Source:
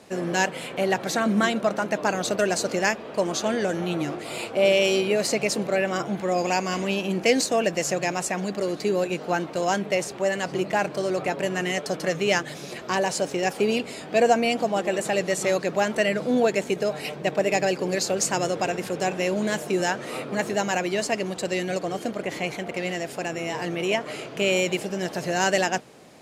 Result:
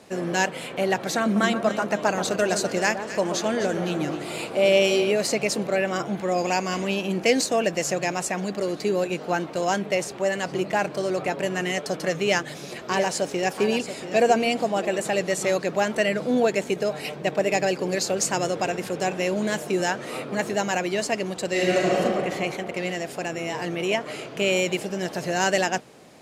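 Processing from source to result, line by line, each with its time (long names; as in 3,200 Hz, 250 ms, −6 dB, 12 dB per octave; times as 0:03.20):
0:01.23–0:05.11: delay that swaps between a low-pass and a high-pass 128 ms, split 1,400 Hz, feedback 65%, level −8 dB
0:12.23–0:14.85: single-tap delay 684 ms −10.5 dB
0:21.50–0:21.98: thrown reverb, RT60 2.5 s, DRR −6 dB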